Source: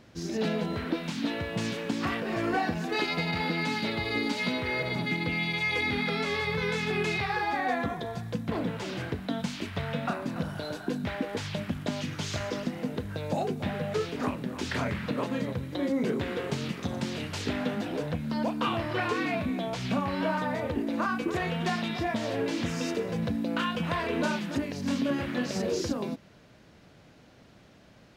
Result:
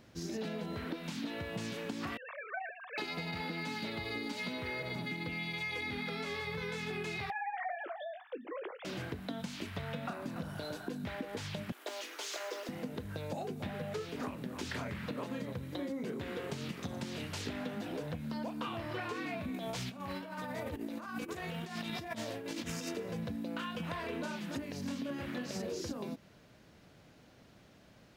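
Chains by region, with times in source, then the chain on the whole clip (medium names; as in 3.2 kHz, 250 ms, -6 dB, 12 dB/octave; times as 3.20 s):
2.17–2.98 s: formants replaced by sine waves + ladder high-pass 670 Hz, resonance 20% + comb 1.8 ms, depth 63%
7.30–8.85 s: formants replaced by sine waves + high-pass 370 Hz + doubling 20 ms -14 dB
11.72–12.69 s: elliptic high-pass 360 Hz, stop band 60 dB + treble shelf 11 kHz +6.5 dB + modulation noise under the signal 33 dB
19.54–22.89 s: treble shelf 5.3 kHz +6.5 dB + compressor with a negative ratio -33 dBFS, ratio -0.5
whole clip: treble shelf 11 kHz +9 dB; compression, threshold -31 dBFS; trim -4.5 dB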